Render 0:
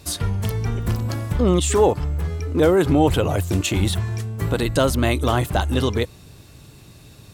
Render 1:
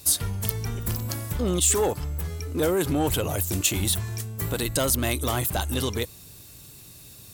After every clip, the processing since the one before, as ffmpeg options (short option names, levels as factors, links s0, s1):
-af "acontrast=75,aemphasis=mode=production:type=75fm,volume=0.237"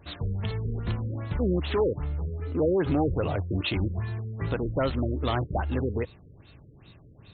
-af "asoftclip=type=hard:threshold=0.126,afftfilt=real='re*lt(b*sr/1024,530*pow(4400/530,0.5+0.5*sin(2*PI*2.5*pts/sr)))':imag='im*lt(b*sr/1024,530*pow(4400/530,0.5+0.5*sin(2*PI*2.5*pts/sr)))':win_size=1024:overlap=0.75"